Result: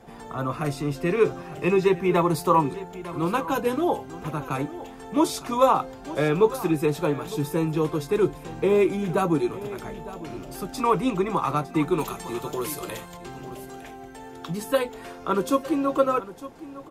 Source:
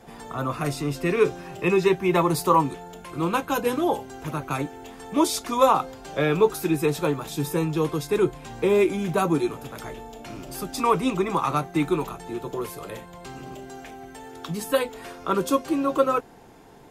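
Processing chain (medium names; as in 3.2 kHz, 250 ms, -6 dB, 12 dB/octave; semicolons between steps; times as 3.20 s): treble shelf 2.3 kHz -5 dB, from 11.98 s +8.5 dB, from 13.17 s -3.5 dB; delay 907 ms -16 dB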